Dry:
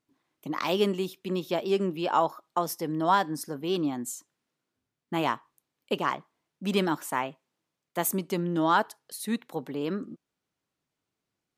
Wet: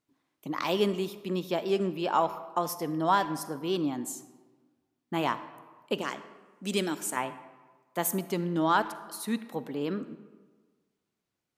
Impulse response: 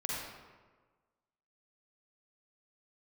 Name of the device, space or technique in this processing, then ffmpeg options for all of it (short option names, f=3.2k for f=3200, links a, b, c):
saturated reverb return: -filter_complex "[0:a]asettb=1/sr,asplit=3[a][b][c];[a]atrim=end=6.014[d];[b]atrim=start=6.01:end=7.17,asetpts=PTS-STARTPTS,afade=t=in:d=0.004:c=qsin,afade=t=out:st=1.156:d=0.004:c=qsin,equalizer=f=125:t=o:w=1:g=-10,equalizer=f=1k:t=o:w=1:g=-9,equalizer=f=8k:t=o:w=1:g=9[e];[c]atrim=start=7.166[f];[d][e]acrossfade=d=0.004:c1=hsin:c2=qsin[g];[g][f]acrossfade=d=0.004:c1=qsin:c2=hsin,asplit=2[h][i];[1:a]atrim=start_sample=2205[j];[i][j]afir=irnorm=-1:irlink=0,asoftclip=type=tanh:threshold=-15.5dB,volume=-14dB[k];[h][k]amix=inputs=2:normalize=0,volume=-2.5dB"